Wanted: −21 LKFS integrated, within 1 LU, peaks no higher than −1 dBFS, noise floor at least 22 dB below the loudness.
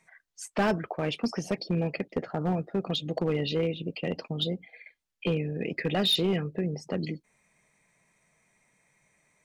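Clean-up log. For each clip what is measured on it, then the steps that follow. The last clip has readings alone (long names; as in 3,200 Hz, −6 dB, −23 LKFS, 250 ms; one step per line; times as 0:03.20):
share of clipped samples 1.0%; peaks flattened at −20.0 dBFS; integrated loudness −30.0 LKFS; sample peak −20.0 dBFS; target loudness −21.0 LKFS
→ clipped peaks rebuilt −20 dBFS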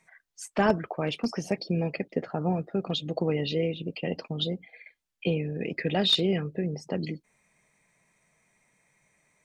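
share of clipped samples 0.0%; integrated loudness −29.0 LKFS; sample peak −11.0 dBFS; target loudness −21.0 LKFS
→ level +8 dB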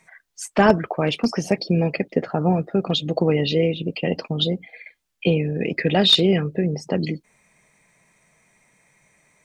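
integrated loudness −21.0 LKFS; sample peak −3.0 dBFS; background noise floor −69 dBFS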